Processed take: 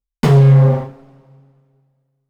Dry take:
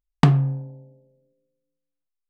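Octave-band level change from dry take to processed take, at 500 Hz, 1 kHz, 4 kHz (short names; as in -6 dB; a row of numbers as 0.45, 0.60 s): +17.0 dB, +4.5 dB, n/a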